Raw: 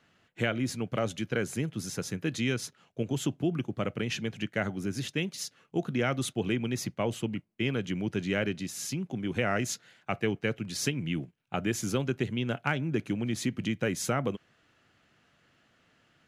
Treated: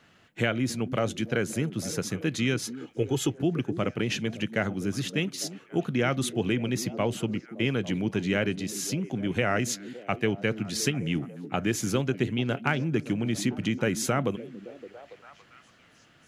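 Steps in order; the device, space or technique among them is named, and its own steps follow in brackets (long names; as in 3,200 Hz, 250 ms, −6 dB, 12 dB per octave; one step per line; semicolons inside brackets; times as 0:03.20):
0:02.65–0:03.33: comb filter 2.4 ms, depth 75%
parallel compression (in parallel at −3 dB: downward compressor, threshold −44 dBFS, peak gain reduction 19.5 dB)
on the sum: echo through a band-pass that steps 283 ms, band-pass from 240 Hz, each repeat 0.7 octaves, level −10 dB
level +2 dB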